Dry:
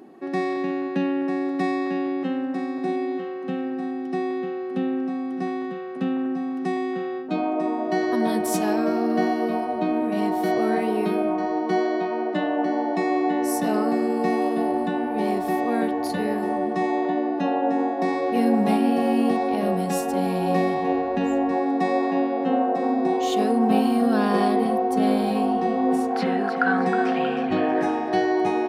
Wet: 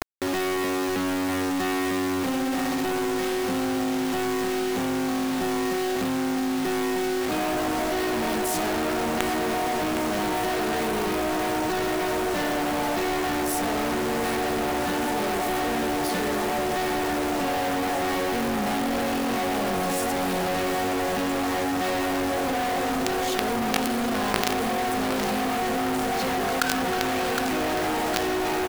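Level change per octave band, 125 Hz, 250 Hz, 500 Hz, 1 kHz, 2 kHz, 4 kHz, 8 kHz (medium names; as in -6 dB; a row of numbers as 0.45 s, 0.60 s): -1.5 dB, -4.0 dB, -2.5 dB, -1.5 dB, +3.5 dB, +8.5 dB, +8.5 dB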